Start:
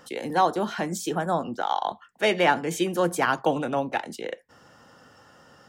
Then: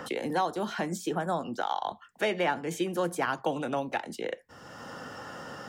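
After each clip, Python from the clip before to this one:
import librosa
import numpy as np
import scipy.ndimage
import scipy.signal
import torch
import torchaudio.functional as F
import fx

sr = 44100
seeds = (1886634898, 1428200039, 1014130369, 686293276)

y = fx.band_squash(x, sr, depth_pct=70)
y = y * 10.0 ** (-5.5 / 20.0)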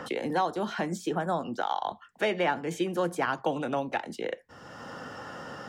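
y = fx.high_shelf(x, sr, hz=7800.0, db=-8.5)
y = y * 10.0 ** (1.0 / 20.0)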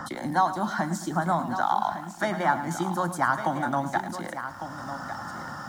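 y = fx.fixed_phaser(x, sr, hz=1100.0, stages=4)
y = y + 10.0 ** (-10.5 / 20.0) * np.pad(y, (int(1153 * sr / 1000.0), 0))[:len(y)]
y = fx.echo_crushed(y, sr, ms=108, feedback_pct=55, bits=9, wet_db=-13)
y = y * 10.0 ** (7.0 / 20.0)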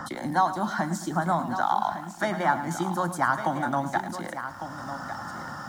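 y = x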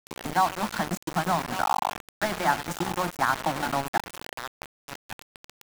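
y = np.where(np.abs(x) >= 10.0 ** (-26.5 / 20.0), x, 0.0)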